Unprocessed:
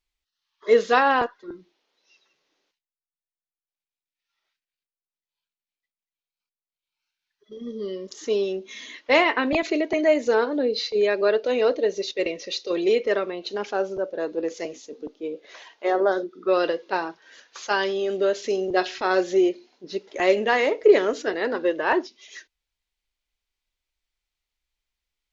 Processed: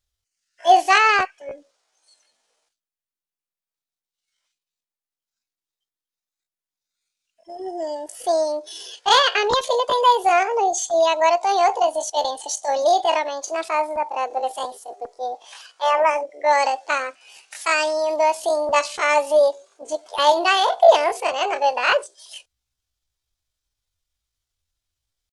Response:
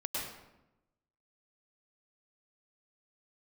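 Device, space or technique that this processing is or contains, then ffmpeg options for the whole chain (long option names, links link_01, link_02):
chipmunk voice: -af "asetrate=70004,aresample=44100,atempo=0.629961,volume=3.5dB"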